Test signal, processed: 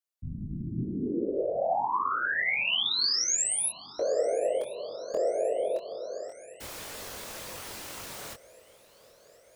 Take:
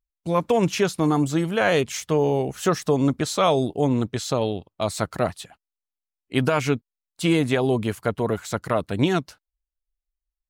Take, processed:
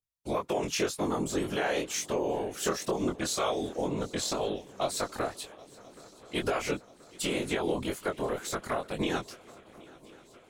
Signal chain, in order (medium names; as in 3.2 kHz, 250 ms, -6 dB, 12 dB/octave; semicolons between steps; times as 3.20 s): tone controls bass -10 dB, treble +3 dB; compression, threshold -23 dBFS; whisper effect; chorus 2 Hz, delay 19.5 ms, depth 5.5 ms; shuffle delay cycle 1031 ms, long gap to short 3:1, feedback 63%, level -23 dB